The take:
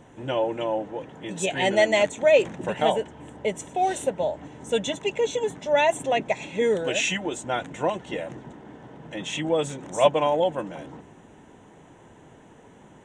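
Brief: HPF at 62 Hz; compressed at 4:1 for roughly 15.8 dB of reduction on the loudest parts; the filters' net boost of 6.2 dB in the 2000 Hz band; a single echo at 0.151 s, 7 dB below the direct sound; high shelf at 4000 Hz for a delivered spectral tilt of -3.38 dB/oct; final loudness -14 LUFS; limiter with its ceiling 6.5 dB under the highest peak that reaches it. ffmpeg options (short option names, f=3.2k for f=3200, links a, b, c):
-af "highpass=62,equalizer=f=2k:t=o:g=6.5,highshelf=f=4k:g=3.5,acompressor=threshold=-32dB:ratio=4,alimiter=level_in=0.5dB:limit=-24dB:level=0:latency=1,volume=-0.5dB,aecho=1:1:151:0.447,volume=21dB"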